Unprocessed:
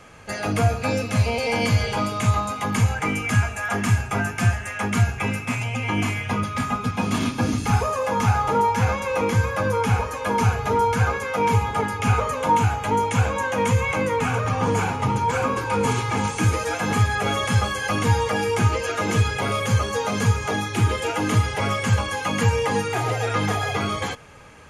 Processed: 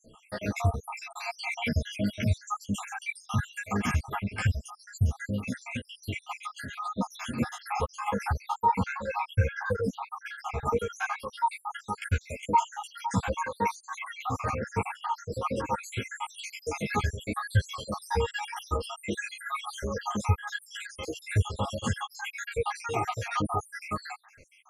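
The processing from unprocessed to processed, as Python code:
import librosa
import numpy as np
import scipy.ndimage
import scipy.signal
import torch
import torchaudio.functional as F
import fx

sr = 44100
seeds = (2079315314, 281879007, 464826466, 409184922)

y = fx.spec_dropout(x, sr, seeds[0], share_pct=77)
y = fx.peak_eq(y, sr, hz=10000.0, db=-9.0, octaves=1.4, at=(8.64, 10.65))
y = fx.ensemble(y, sr)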